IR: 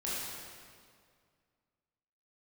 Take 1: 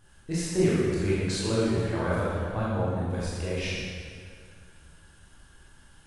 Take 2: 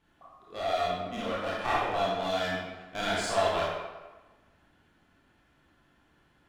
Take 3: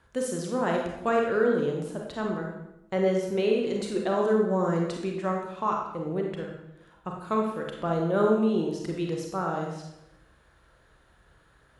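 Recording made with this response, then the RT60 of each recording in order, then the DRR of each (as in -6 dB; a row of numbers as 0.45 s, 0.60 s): 1; 2.1 s, 1.2 s, 0.85 s; -8.5 dB, -7.0 dB, 0.0 dB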